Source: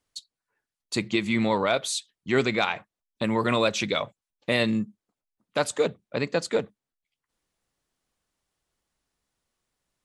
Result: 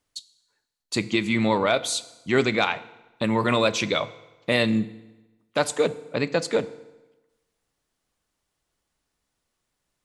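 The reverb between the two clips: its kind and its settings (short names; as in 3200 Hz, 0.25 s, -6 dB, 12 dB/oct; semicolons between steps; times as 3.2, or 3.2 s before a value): FDN reverb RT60 1.1 s, low-frequency decay 1×, high-frequency decay 0.85×, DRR 14.5 dB; gain +2 dB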